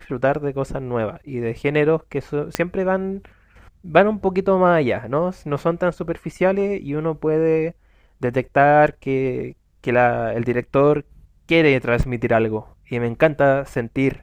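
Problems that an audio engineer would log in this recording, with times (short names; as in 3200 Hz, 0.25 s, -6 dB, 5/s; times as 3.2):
2.55 pop -5 dBFS
12.03 gap 3.2 ms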